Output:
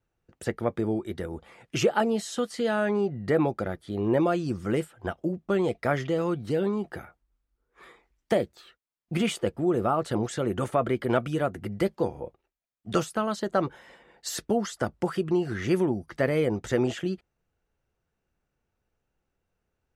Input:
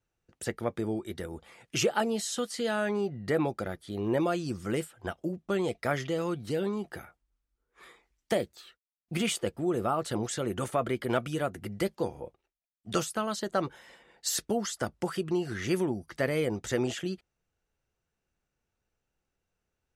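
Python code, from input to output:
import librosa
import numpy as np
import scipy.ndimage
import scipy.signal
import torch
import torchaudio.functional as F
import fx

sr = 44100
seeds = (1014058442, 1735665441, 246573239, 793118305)

y = fx.high_shelf(x, sr, hz=2900.0, db=-9.5)
y = y * 10.0 ** (4.5 / 20.0)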